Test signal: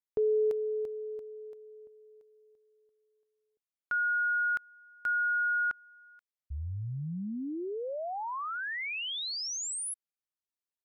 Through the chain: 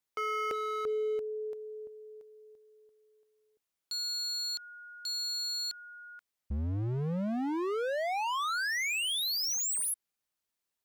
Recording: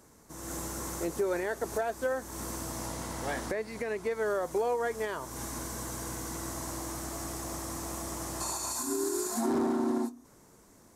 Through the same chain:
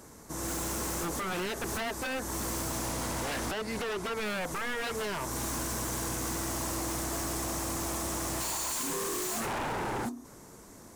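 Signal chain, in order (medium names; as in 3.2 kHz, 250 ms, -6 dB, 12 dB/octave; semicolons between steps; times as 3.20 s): in parallel at +2.5 dB: peak limiter -30.5 dBFS; on the sum: wavefolder -28.5 dBFS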